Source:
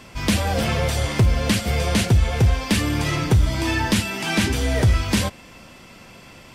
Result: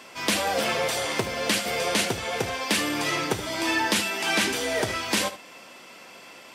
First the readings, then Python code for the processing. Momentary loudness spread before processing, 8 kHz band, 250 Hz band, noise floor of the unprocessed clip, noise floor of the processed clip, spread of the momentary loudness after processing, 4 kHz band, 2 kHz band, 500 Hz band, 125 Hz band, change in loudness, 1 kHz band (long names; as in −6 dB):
4 LU, 0.0 dB, −8.0 dB, −45 dBFS, −47 dBFS, 21 LU, 0.0 dB, 0.0 dB, −1.0 dB, −19.5 dB, −4.5 dB, 0.0 dB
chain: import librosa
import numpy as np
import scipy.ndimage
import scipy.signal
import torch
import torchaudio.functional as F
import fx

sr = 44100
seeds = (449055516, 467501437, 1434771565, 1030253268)

p1 = scipy.signal.sosfilt(scipy.signal.butter(2, 370.0, 'highpass', fs=sr, output='sos'), x)
y = p1 + fx.echo_single(p1, sr, ms=74, db=-13.0, dry=0)